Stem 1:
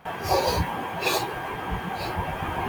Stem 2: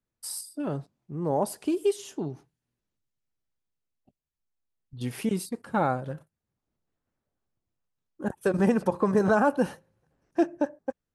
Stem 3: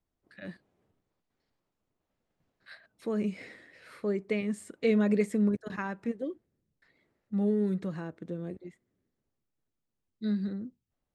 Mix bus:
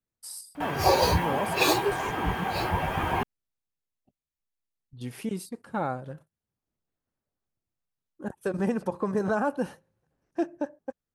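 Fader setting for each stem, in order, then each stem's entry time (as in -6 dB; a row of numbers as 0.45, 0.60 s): +1.5 dB, -4.5 dB, off; 0.55 s, 0.00 s, off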